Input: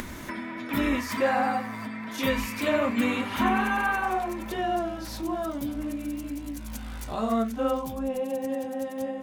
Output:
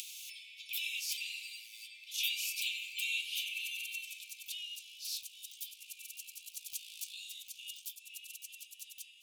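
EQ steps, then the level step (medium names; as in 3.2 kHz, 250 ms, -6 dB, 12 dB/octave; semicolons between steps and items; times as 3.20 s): steep high-pass 2.5 kHz 96 dB/octave; +2.0 dB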